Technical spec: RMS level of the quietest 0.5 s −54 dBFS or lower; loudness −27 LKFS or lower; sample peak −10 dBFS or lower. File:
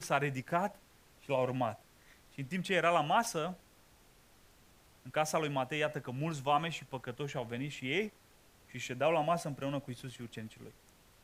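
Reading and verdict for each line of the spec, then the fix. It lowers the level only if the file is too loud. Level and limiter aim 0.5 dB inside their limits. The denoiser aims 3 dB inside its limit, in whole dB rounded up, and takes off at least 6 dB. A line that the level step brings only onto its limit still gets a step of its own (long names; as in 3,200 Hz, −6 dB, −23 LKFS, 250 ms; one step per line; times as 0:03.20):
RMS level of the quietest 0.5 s −63 dBFS: in spec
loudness −35.0 LKFS: in spec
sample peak −14.0 dBFS: in spec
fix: no processing needed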